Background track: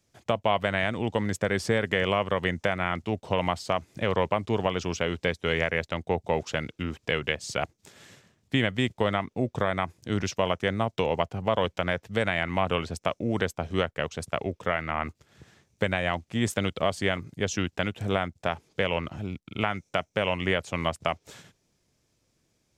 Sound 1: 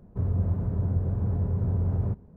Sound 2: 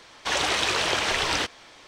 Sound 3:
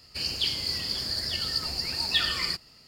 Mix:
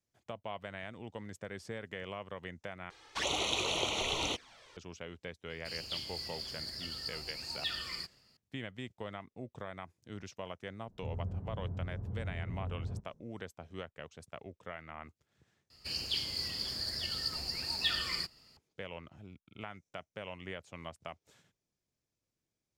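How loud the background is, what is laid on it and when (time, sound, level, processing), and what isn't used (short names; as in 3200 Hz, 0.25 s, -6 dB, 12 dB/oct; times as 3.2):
background track -17.5 dB
2.9 replace with 2 -6 dB + envelope flanger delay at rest 2.7 ms, full sweep at -22 dBFS
5.5 add 3 -12 dB
10.86 add 1 -13 dB + air absorption 340 m
15.7 replace with 3 -7 dB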